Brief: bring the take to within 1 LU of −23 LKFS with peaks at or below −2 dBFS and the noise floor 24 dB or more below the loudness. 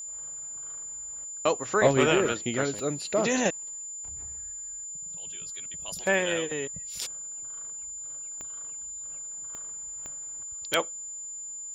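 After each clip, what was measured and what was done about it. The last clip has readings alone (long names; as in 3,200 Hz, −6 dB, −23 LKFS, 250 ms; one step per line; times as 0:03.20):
number of clicks 5; interfering tone 7,100 Hz; level of the tone −36 dBFS; integrated loudness −30.0 LKFS; sample peak −8.5 dBFS; target loudness −23.0 LKFS
→ click removal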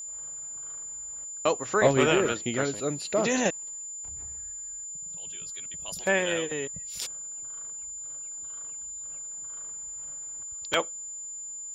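number of clicks 0; interfering tone 7,100 Hz; level of the tone −36 dBFS
→ notch filter 7,100 Hz, Q 30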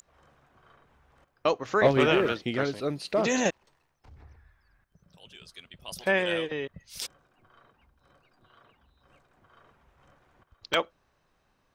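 interfering tone none found; integrated loudness −27.5 LKFS; sample peak −8.5 dBFS; target loudness −23.0 LKFS
→ level +4.5 dB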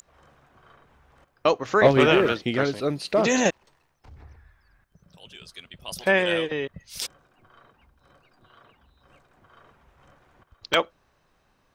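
integrated loudness −23.0 LKFS; sample peak −4.0 dBFS; background noise floor −67 dBFS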